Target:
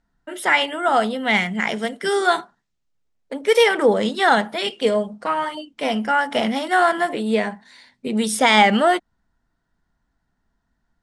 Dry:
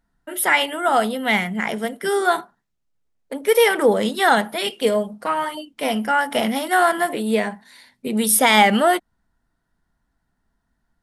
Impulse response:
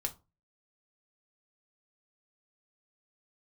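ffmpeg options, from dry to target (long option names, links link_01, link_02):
-filter_complex "[0:a]lowpass=frequency=7900:width=0.5412,lowpass=frequency=7900:width=1.3066,asplit=3[link_01][link_02][link_03];[link_01]afade=type=out:start_time=1.34:duration=0.02[link_04];[link_02]adynamicequalizer=threshold=0.02:dfrequency=2000:dqfactor=0.7:tfrequency=2000:tqfactor=0.7:attack=5:release=100:ratio=0.375:range=2.5:mode=boostabove:tftype=highshelf,afade=type=in:start_time=1.34:duration=0.02,afade=type=out:start_time=3.62:duration=0.02[link_05];[link_03]afade=type=in:start_time=3.62:duration=0.02[link_06];[link_04][link_05][link_06]amix=inputs=3:normalize=0"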